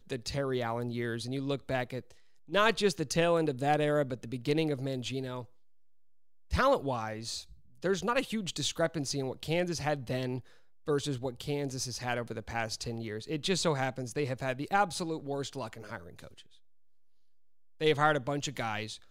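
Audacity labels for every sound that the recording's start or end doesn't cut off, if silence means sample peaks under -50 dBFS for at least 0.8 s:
6.510000	16.570000	sound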